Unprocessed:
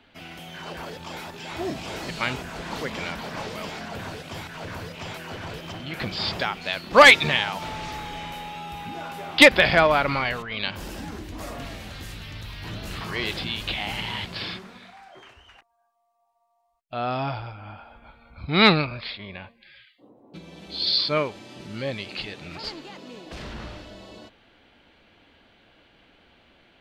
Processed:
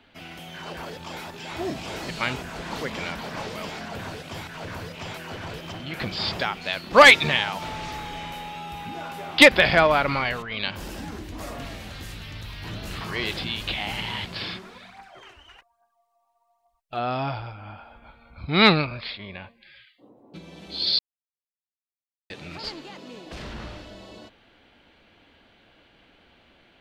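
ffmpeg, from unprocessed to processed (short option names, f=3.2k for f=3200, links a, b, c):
-filter_complex "[0:a]asplit=3[a][b][c];[a]afade=t=out:st=14.62:d=0.02[d];[b]aphaser=in_gain=1:out_gain=1:delay=3.6:decay=0.55:speed=1.2:type=triangular,afade=t=in:st=14.62:d=0.02,afade=t=out:st=16.98:d=0.02[e];[c]afade=t=in:st=16.98:d=0.02[f];[d][e][f]amix=inputs=3:normalize=0,asplit=3[g][h][i];[g]atrim=end=20.99,asetpts=PTS-STARTPTS,afade=t=out:st=20.986:d=0.004:c=hsin[j];[h]atrim=start=20.99:end=22.3,asetpts=PTS-STARTPTS,volume=0[k];[i]atrim=start=22.3,asetpts=PTS-STARTPTS,afade=t=in:d=0.004:c=hsin[l];[j][k][l]concat=n=3:v=0:a=1"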